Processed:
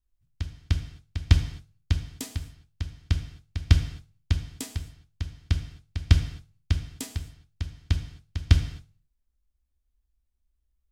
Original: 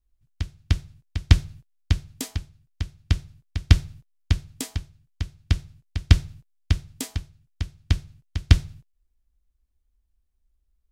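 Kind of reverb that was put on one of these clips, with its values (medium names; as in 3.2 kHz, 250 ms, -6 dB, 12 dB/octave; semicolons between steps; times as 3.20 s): gated-style reverb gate 290 ms falling, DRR 7 dB; trim -4.5 dB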